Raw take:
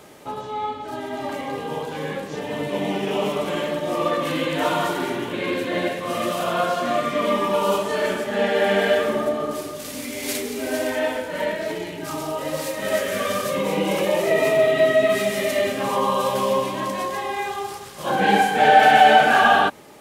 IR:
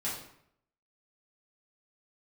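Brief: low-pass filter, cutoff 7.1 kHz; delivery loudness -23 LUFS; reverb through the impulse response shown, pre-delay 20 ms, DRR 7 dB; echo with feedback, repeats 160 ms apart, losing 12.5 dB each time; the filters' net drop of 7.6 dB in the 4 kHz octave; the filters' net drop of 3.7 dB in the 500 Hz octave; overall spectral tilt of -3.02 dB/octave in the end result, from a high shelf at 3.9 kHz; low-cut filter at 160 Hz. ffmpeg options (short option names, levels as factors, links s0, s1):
-filter_complex "[0:a]highpass=160,lowpass=7100,equalizer=f=500:t=o:g=-4.5,highshelf=f=3900:g=-4,equalizer=f=4000:t=o:g=-8.5,aecho=1:1:160|320|480:0.237|0.0569|0.0137,asplit=2[s0][s1];[1:a]atrim=start_sample=2205,adelay=20[s2];[s1][s2]afir=irnorm=-1:irlink=0,volume=0.266[s3];[s0][s3]amix=inputs=2:normalize=0"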